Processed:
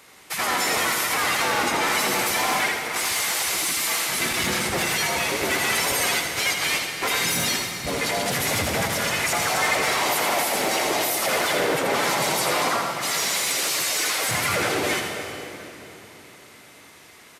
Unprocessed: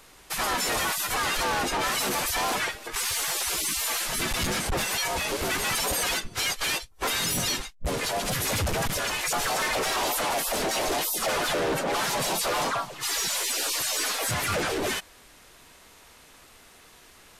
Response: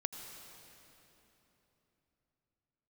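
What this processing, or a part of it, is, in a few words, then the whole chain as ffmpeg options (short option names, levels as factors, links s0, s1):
PA in a hall: -filter_complex "[0:a]highpass=110,equalizer=f=2100:t=o:w=0.27:g=6.5,aecho=1:1:82:0.501[s0];[1:a]atrim=start_sample=2205[s1];[s0][s1]afir=irnorm=-1:irlink=0,volume=1.33"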